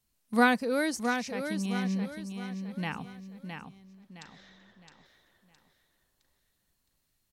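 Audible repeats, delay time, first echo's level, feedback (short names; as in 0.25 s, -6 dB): 4, 0.664 s, -7.0 dB, 38%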